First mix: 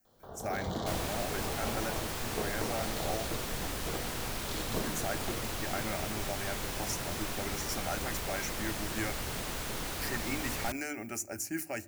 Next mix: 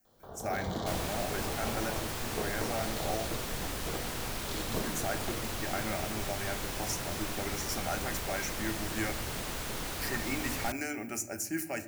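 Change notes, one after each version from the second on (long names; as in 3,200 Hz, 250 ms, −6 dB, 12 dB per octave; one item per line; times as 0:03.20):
speech: send +10.5 dB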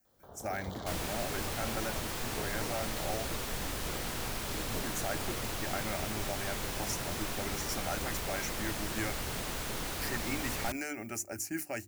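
first sound −3.0 dB
reverb: off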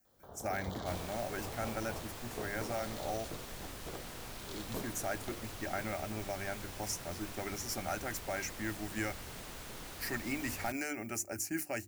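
second sound −9.5 dB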